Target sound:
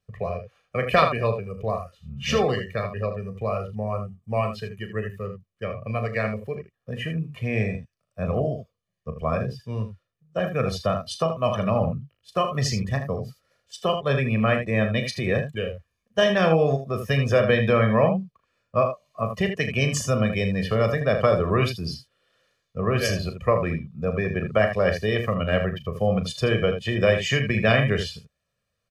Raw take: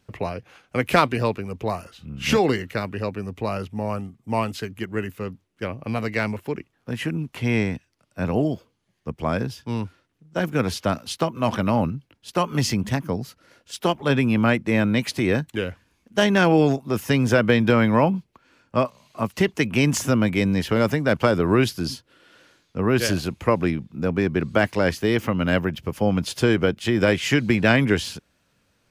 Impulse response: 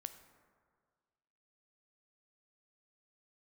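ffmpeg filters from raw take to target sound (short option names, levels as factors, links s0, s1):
-af "aecho=1:1:1.7:0.75,aecho=1:1:37|79:0.398|0.422,afftdn=nr=12:nf=-31,volume=0.631"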